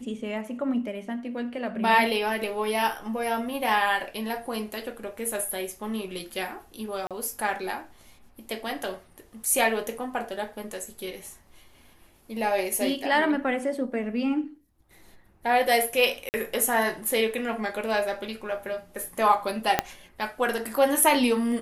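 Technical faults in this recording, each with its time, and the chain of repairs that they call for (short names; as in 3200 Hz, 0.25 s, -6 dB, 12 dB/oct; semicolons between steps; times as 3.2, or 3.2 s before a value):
7.07–7.11 gap 37 ms
16.29–16.34 gap 49 ms
19.79 pop -5 dBFS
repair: de-click; interpolate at 7.07, 37 ms; interpolate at 16.29, 49 ms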